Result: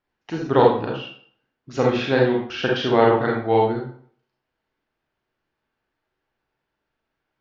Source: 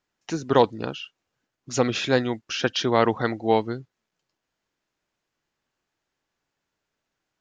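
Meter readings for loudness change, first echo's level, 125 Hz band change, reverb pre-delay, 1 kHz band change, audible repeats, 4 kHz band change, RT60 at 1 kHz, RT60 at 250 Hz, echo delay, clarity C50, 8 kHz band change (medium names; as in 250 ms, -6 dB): +4.0 dB, no echo, +4.0 dB, 32 ms, +3.5 dB, no echo, -1.0 dB, 0.55 s, 0.50 s, no echo, 2.5 dB, no reading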